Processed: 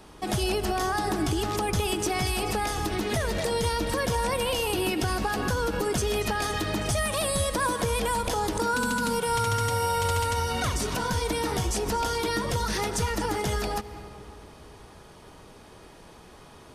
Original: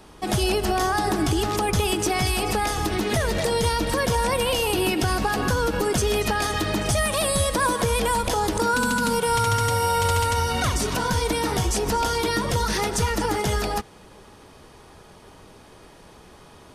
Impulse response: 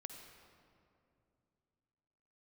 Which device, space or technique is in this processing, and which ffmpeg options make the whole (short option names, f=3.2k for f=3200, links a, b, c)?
ducked reverb: -filter_complex "[0:a]asplit=3[a][b][c];[1:a]atrim=start_sample=2205[d];[b][d]afir=irnorm=-1:irlink=0[e];[c]apad=whole_len=738399[f];[e][f]sidechaincompress=threshold=-35dB:ratio=3:attack=44:release=191,volume=2dB[g];[a][g]amix=inputs=2:normalize=0,volume=-6dB"